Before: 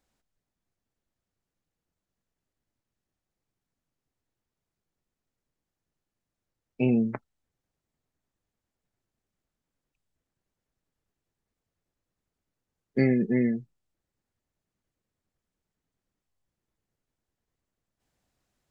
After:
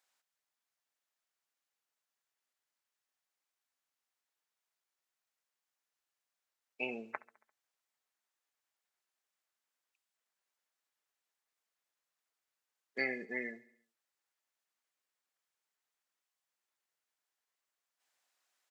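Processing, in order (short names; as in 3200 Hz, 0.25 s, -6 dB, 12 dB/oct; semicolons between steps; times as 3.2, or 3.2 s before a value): HPF 990 Hz 12 dB/oct; on a send: feedback echo 69 ms, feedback 58%, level -21 dB; on the sum: gain +1 dB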